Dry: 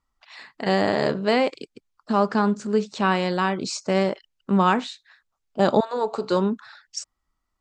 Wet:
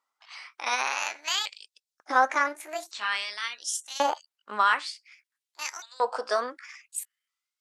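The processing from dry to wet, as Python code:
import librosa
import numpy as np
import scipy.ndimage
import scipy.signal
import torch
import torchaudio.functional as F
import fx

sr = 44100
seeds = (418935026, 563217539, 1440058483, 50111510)

y = fx.pitch_ramps(x, sr, semitones=8.5, every_ms=1455)
y = fx.filter_lfo_highpass(y, sr, shape='saw_up', hz=0.5, low_hz=590.0, high_hz=4800.0, q=1.1)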